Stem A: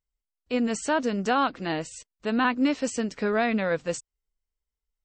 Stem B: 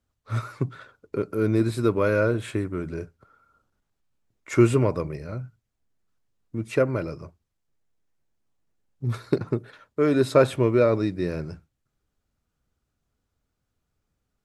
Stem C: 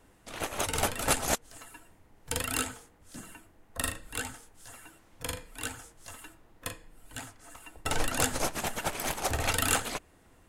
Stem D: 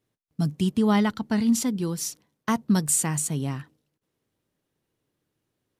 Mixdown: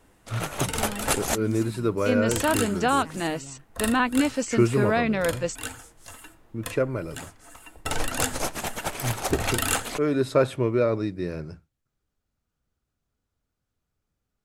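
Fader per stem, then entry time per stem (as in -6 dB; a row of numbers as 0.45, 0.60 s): +1.0, -3.0, +2.0, -16.0 dB; 1.55, 0.00, 0.00, 0.00 s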